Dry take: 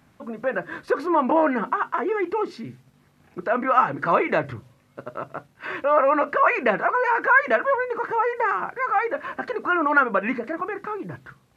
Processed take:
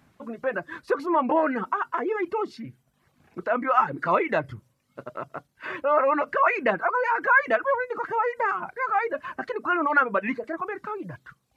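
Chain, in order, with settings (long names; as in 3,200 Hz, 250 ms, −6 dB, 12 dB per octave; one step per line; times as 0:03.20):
reverb reduction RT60 0.71 s
level −2 dB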